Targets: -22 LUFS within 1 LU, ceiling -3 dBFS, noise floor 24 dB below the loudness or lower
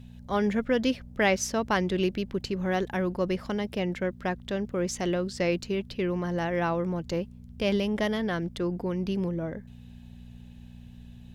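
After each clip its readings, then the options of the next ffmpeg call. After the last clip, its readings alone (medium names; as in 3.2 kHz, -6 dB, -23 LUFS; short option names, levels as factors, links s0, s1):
hum 60 Hz; highest harmonic 240 Hz; hum level -42 dBFS; loudness -29.0 LUFS; peak level -12.0 dBFS; loudness target -22.0 LUFS
-> -af "bandreject=f=60:t=h:w=4,bandreject=f=120:t=h:w=4,bandreject=f=180:t=h:w=4,bandreject=f=240:t=h:w=4"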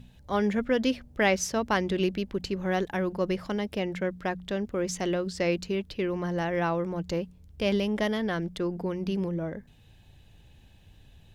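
hum not found; loudness -29.0 LUFS; peak level -12.0 dBFS; loudness target -22.0 LUFS
-> -af "volume=2.24"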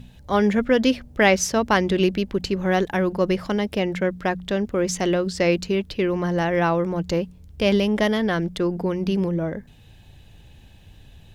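loudness -22.0 LUFS; peak level -5.0 dBFS; noise floor -49 dBFS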